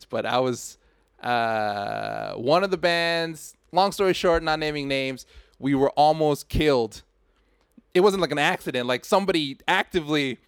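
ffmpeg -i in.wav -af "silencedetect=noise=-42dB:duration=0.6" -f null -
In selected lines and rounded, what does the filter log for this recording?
silence_start: 7.01
silence_end: 7.78 | silence_duration: 0.77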